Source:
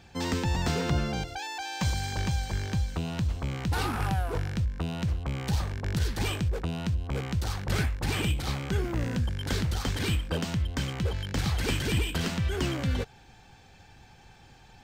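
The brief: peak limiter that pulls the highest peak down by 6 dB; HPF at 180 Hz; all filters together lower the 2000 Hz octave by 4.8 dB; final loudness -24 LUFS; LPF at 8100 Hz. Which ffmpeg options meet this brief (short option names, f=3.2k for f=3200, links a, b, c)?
-af "highpass=180,lowpass=8.1k,equalizer=f=2k:t=o:g=-6.5,volume=12dB,alimiter=limit=-12dB:level=0:latency=1"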